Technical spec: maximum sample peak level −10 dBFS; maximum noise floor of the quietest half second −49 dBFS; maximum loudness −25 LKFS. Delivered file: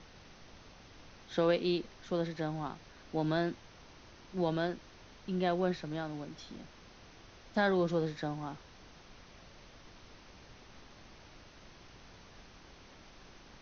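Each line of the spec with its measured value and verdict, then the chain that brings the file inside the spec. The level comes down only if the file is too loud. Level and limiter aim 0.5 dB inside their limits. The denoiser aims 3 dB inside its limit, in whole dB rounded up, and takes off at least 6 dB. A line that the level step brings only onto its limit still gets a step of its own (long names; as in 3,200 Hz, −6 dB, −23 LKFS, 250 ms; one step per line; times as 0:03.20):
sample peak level −18.0 dBFS: in spec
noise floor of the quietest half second −56 dBFS: in spec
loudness −34.5 LKFS: in spec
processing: no processing needed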